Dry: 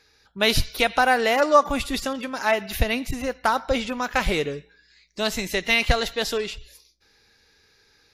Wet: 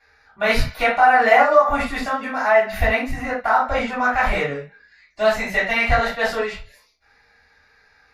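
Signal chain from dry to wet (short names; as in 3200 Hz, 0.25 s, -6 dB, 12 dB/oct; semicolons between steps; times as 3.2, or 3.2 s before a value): band shelf 1100 Hz +13.5 dB 2.3 oct; limiter -2 dBFS, peak gain reduction 10.5 dB; reverb, pre-delay 3 ms, DRR -10.5 dB; gain -18 dB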